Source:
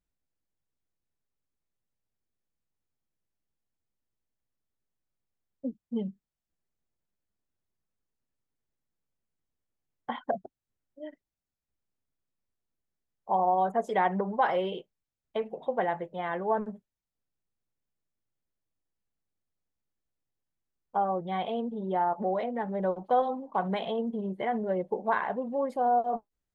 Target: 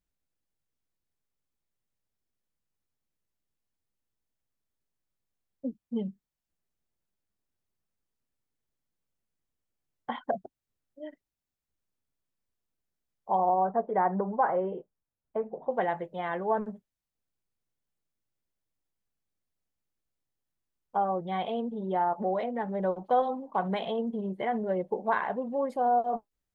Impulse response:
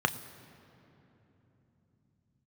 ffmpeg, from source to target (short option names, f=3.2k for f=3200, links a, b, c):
-filter_complex "[0:a]asettb=1/sr,asplit=3[a][b][c];[a]atrim=end=13.494[d];[b]atrim=start=13.49:end=15.71,asetpts=PTS-STARTPTS,afade=t=in:d=0.004:c=qsin,afade=t=out:st=2.216:d=0.004:c=qsin,lowpass=f=1.5k:w=0.5412,lowpass=f=1.5k:w=1.3066[e];[c]atrim=start=15.706[f];[d][e]acrossfade=d=0.004:c1=hsin:c2=qsin[g];[g][f]acrossfade=d=0.004:c1=qsin:c2=hsin"